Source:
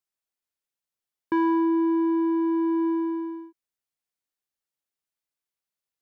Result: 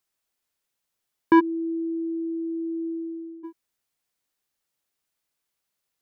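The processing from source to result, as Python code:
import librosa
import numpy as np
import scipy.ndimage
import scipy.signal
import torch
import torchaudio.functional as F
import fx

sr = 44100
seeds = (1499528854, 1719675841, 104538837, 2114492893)

y = fx.cheby2_lowpass(x, sr, hz=770.0, order=4, stop_db=60, at=(1.39, 3.43), fade=0.02)
y = F.gain(torch.from_numpy(y), 8.5).numpy()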